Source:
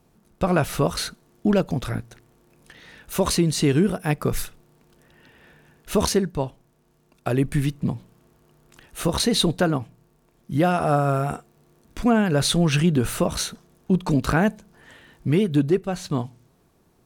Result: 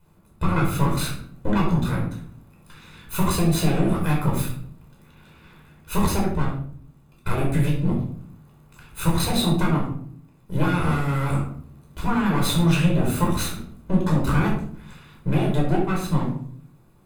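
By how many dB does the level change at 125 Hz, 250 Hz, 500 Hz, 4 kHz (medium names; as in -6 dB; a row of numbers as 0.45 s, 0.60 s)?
+2.5 dB, -0.5 dB, -5.0 dB, -3.5 dB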